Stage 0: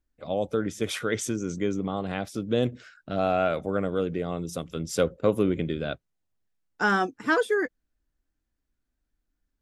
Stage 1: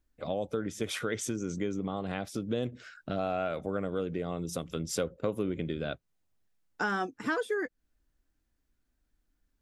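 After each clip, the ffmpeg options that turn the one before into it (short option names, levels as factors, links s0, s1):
-af "acompressor=threshold=0.0158:ratio=2.5,volume=1.41"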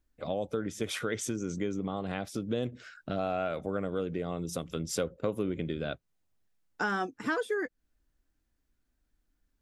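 -af anull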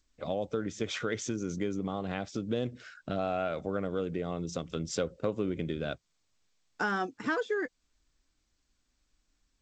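-ar 16000 -c:a g722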